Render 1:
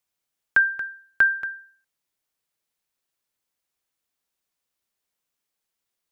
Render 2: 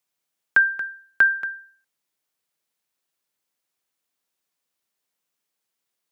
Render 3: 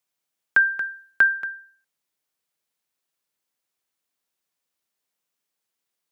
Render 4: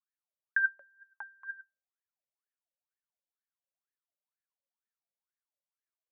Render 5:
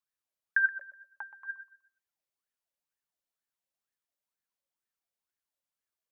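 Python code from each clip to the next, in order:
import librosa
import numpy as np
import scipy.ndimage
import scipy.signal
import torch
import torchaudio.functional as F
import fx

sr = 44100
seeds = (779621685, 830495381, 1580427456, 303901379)

y1 = scipy.signal.sosfilt(scipy.signal.butter(2, 120.0, 'highpass', fs=sr, output='sos'), x)
y1 = F.gain(torch.from_numpy(y1), 1.5).numpy()
y2 = fx.rider(y1, sr, range_db=4, speed_s=0.5)
y3 = fx.wah_lfo(y2, sr, hz=2.1, low_hz=540.0, high_hz=1800.0, q=18.0)
y4 = fx.echo_feedback(y3, sr, ms=124, feedback_pct=30, wet_db=-14.5)
y4 = F.gain(torch.from_numpy(y4), 2.0).numpy()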